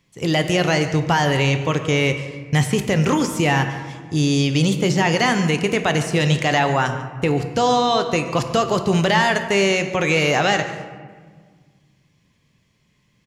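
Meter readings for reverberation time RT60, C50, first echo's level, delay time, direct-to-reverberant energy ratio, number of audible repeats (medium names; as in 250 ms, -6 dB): 1.6 s, 8.5 dB, -16.5 dB, 144 ms, 6.5 dB, 1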